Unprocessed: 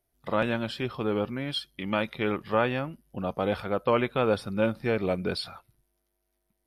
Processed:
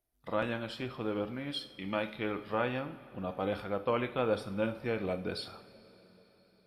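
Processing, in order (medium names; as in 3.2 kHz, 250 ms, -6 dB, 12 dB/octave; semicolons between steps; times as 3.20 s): two-slope reverb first 0.5 s, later 4.7 s, from -18 dB, DRR 7.5 dB; trim -7 dB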